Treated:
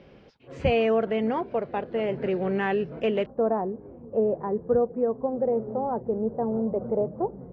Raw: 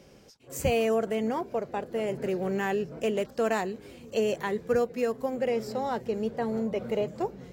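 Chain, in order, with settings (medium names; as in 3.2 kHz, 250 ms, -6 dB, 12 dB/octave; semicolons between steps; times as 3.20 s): low-pass 3.5 kHz 24 dB/octave, from 3.26 s 1 kHz; trim +3 dB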